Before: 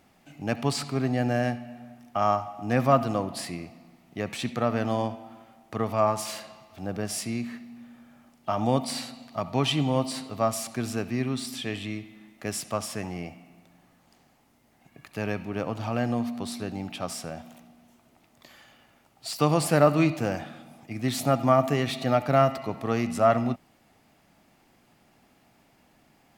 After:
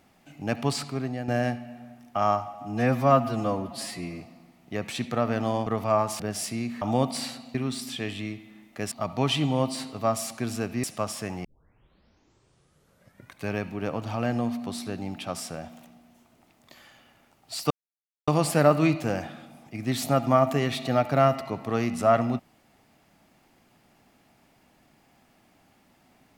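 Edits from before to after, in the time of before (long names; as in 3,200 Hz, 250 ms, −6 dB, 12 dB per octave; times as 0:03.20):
0:00.71–0:01.28: fade out, to −9.5 dB
0:02.54–0:03.65: time-stretch 1.5×
0:05.11–0:05.75: remove
0:06.28–0:06.94: remove
0:07.56–0:08.55: remove
0:11.20–0:12.57: move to 0:09.28
0:13.18: tape start 2.10 s
0:19.44: splice in silence 0.57 s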